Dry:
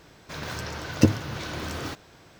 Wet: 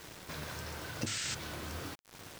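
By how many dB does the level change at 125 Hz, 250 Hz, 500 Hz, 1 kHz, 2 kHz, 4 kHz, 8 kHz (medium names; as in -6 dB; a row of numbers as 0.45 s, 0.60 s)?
-15.0 dB, -18.0 dB, -13.0 dB, -8.5 dB, -6.5 dB, -3.5 dB, 0.0 dB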